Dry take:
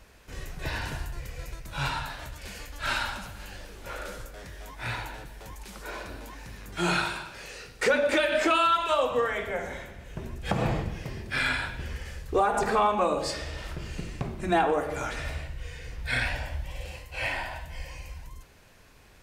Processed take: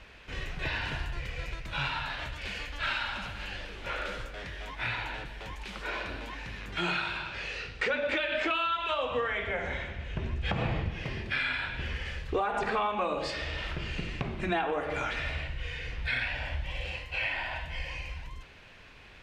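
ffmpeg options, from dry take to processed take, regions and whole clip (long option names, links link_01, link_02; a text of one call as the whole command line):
ffmpeg -i in.wav -filter_complex "[0:a]asettb=1/sr,asplit=3[link_01][link_02][link_03];[link_01]atrim=end=7.064[link_04];[link_02]atrim=start=7.06:end=10.91,asetpts=PTS-STARTPTS,afade=type=in:duration=0.004:curve=qsin,afade=type=out:start_time=3.846:duration=0.004:curve=qsin,lowpass=8600,equalizer=frequency=71:width=1:gain=8[link_05];[link_03]atrim=start=10.906[link_06];[link_04][link_05]acrossfade=duration=0.004:curve1=hsin:curve2=qsin[link_07];[link_07][link_06]acrossfade=duration=0.004:curve1=qsin:curve2=hsin,equalizer=frequency=2900:width=0.77:gain=12.5,acompressor=threshold=-29dB:ratio=3,aemphasis=mode=reproduction:type=75fm" out.wav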